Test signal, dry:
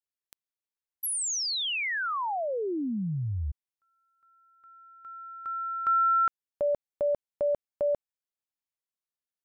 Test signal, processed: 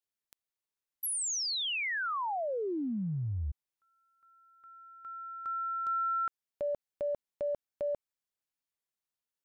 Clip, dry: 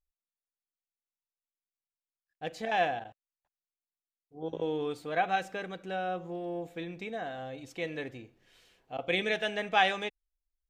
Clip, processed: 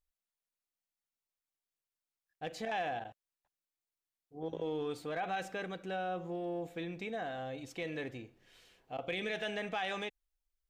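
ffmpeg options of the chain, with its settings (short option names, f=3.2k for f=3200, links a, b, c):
-af "acompressor=threshold=-31dB:ratio=4:attack=0.12:release=52:knee=6:detection=rms"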